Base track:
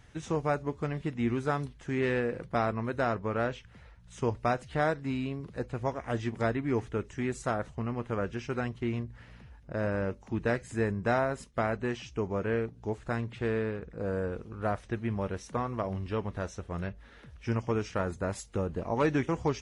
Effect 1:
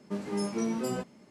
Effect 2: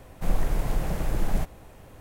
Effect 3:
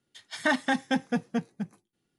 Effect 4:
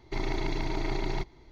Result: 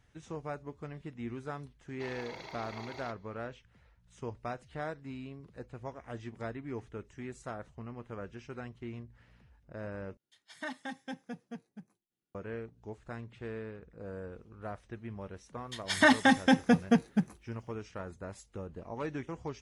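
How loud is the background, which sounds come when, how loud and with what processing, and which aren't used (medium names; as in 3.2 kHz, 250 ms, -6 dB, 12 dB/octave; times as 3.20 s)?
base track -10.5 dB
1.88 s: add 4 -8.5 dB + high-pass 460 Hz 24 dB/octave
10.17 s: replace with 3 -15 dB
15.57 s: add 3 -11 dB + loudness maximiser +17 dB
not used: 1, 2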